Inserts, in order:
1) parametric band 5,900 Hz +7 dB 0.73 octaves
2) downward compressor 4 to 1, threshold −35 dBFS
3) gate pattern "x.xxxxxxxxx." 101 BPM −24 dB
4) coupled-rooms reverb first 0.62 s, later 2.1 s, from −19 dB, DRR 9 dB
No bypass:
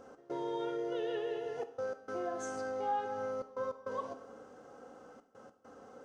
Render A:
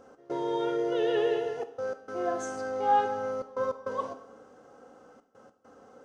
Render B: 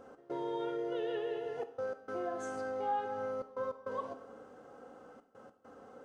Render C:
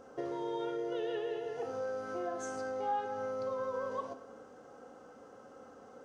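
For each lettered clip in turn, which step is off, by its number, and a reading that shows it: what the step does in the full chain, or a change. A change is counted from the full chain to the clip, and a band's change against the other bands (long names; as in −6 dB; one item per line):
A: 2, change in crest factor +3.0 dB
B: 1, 8 kHz band −5.5 dB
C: 3, change in momentary loudness spread −1 LU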